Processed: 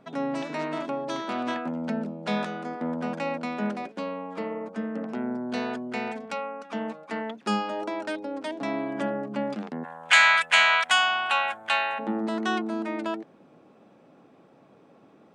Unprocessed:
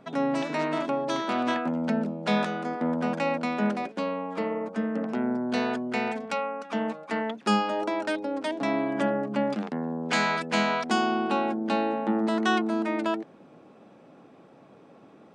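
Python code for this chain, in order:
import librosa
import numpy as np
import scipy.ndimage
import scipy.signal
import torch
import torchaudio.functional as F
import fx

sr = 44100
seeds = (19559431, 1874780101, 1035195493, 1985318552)

y = fx.curve_eq(x, sr, hz=(120.0, 200.0, 390.0, 570.0, 1700.0, 3300.0, 5000.0, 7800.0), db=(0, -23, -22, -2, 14, 15, 3, 13), at=(9.83, 11.98), fade=0.02)
y = F.gain(torch.from_numpy(y), -3.0).numpy()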